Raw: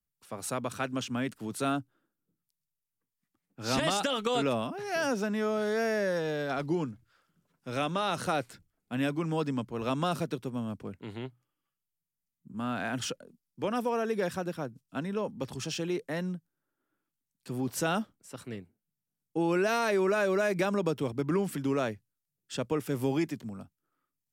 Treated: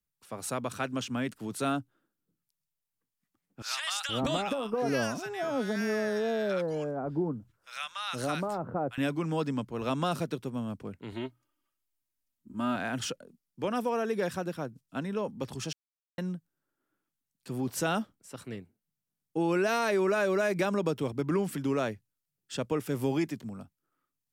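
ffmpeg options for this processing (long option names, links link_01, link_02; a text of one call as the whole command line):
ffmpeg -i in.wav -filter_complex "[0:a]asettb=1/sr,asplit=3[link_01][link_02][link_03];[link_01]atrim=end=3.624[link_04];[link_02]atrim=start=3.62:end=8.98,asetpts=PTS-STARTPTS,afade=type=in:duration=0.004:curve=qsin,afade=type=out:start_time=5.356:duration=0.004:curve=qsin,acrossover=split=1100[link_05][link_06];[link_05]adelay=470[link_07];[link_07][link_06]amix=inputs=2:normalize=0,atrim=end_sample=236376[link_08];[link_03]atrim=start=8.976[link_09];[link_04][link_08]acrossfade=duration=0.004:curve1=hsin:curve2=qsin[link_10];[link_10][link_09]acrossfade=duration=0.004:curve1=qsin:curve2=hsin,asettb=1/sr,asplit=3[link_11][link_12][link_13];[link_11]atrim=end=11.124[link_14];[link_12]atrim=start=11.12:end=12.76,asetpts=PTS-STARTPTS,afade=type=in:duration=0.004:curve=qsin,afade=type=out:start_time=1.636:duration=0.004:curve=qsin,aecho=1:1:3.2:0.94,atrim=end_sample=72324[link_15];[link_13]atrim=start=12.756[link_16];[link_14][link_15]acrossfade=duration=0.004:curve1=hsin:curve2=qsin[link_17];[link_17][link_16]acrossfade=duration=0.004:curve1=qsin:curve2=hsin,asplit=3[link_18][link_19][link_20];[link_18]atrim=end=15.73,asetpts=PTS-STARTPTS,afade=type=out:start_time=15.726:duration=0.004:curve=hsin[link_21];[link_19]atrim=start=15.73:end=16.18,asetpts=PTS-STARTPTS,volume=0[link_22];[link_20]atrim=start=16.18,asetpts=PTS-STARTPTS,afade=type=in:duration=0.004:curve=hsin[link_23];[link_21][link_22][link_23]concat=n=3:v=0:a=1" out.wav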